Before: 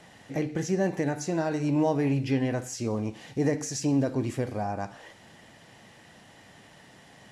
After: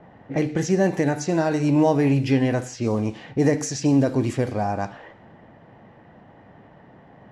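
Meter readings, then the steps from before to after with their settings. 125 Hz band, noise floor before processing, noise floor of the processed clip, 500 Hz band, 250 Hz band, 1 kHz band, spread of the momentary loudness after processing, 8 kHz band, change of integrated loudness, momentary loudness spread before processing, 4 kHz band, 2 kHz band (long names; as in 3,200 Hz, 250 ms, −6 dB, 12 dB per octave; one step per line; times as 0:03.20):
+6.5 dB, −54 dBFS, −50 dBFS, +6.5 dB, +6.5 dB, +6.5 dB, 8 LU, +3.5 dB, +6.5 dB, 8 LU, +5.0 dB, +6.5 dB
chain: low-pass that shuts in the quiet parts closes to 940 Hz, open at −24.5 dBFS
level +6.5 dB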